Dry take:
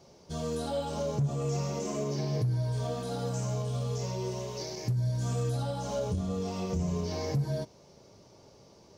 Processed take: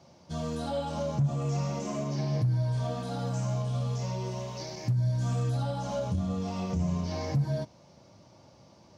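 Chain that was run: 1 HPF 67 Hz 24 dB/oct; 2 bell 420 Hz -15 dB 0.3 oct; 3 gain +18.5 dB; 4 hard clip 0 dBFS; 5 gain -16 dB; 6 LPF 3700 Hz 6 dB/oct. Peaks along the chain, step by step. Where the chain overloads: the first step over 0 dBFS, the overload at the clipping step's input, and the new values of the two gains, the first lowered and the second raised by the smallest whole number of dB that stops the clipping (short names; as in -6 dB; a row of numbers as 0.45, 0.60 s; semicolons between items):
-20.5, -21.0, -2.5, -2.5, -18.5, -18.5 dBFS; no overload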